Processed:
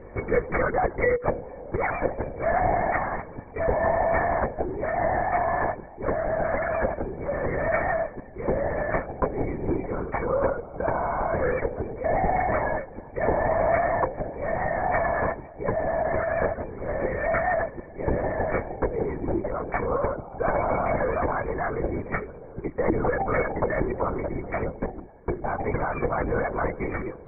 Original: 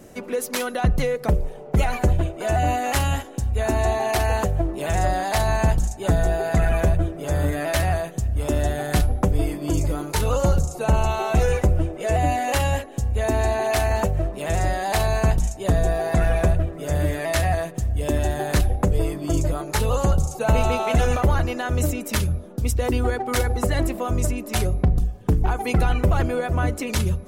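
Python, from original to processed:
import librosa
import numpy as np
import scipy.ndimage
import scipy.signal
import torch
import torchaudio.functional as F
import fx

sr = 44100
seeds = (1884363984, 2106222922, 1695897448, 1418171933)

y = fx.rider(x, sr, range_db=10, speed_s=2.0)
y = fx.brickwall_bandpass(y, sr, low_hz=210.0, high_hz=2400.0)
y = fx.lpc_vocoder(y, sr, seeds[0], excitation='whisper', order=8)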